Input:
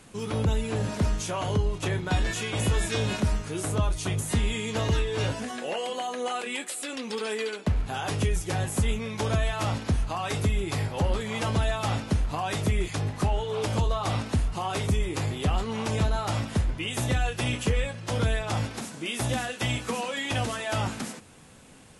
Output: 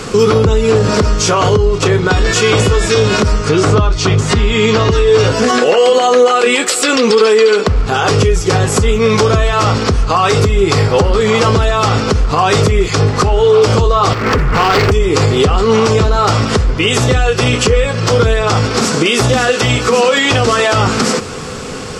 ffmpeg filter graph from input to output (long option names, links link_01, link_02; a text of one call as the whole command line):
ffmpeg -i in.wav -filter_complex "[0:a]asettb=1/sr,asplit=3[link_01][link_02][link_03];[link_01]atrim=end=3.494[link_04];[link_02]atrim=start=3.49:end=4.91,asetpts=PTS-STARTPTS,afade=type=in:duration=0.004:curve=qsin,afade=type=out:start_time=1.416:duration=0.004:curve=qsin,lowpass=5200,equalizer=frequency=480:width_type=o:width=0.41:gain=-5,acontrast=29[link_05];[link_03]atrim=start=4.906[link_06];[link_04][link_05]acrossfade=duration=0.004:curve1=hsin:curve2=qsin[link_07];[link_07][link_06]acrossfade=duration=0.004:curve1=qsin:curve2=hsin,asettb=1/sr,asplit=3[link_08][link_09][link_10];[link_08]atrim=end=14.134[link_11];[link_09]atrim=start=14.13:end=14.92,asetpts=PTS-STARTPTS,afade=type=in:duration=0.004:curve=qsin,afade=type=out:start_time=0.786:duration=0.004:curve=qsin,highshelf=frequency=2900:width_type=q:width=3:gain=-12,acompressor=threshold=-30dB:ratio=8:attack=3.2:release=140:knee=1:detection=peak,aeval=exprs='0.0224*(abs(mod(val(0)/0.0224+3,4)-2)-1)':channel_layout=same[link_12];[link_10]atrim=start=14.916[link_13];[link_11][link_12]acrossfade=duration=0.004:curve1=hsin:curve2=qsin[link_14];[link_14][link_13]acrossfade=duration=0.004:curve1=qsin:curve2=hsin,acompressor=threshold=-34dB:ratio=10,superequalizer=7b=2.51:10b=2:14b=1.78:16b=0.282,alimiter=level_in=27dB:limit=-1dB:release=50:level=0:latency=1,volume=-1dB" out.wav